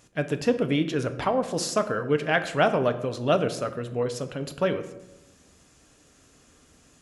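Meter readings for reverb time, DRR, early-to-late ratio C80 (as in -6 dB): 1.0 s, 8.0 dB, 14.5 dB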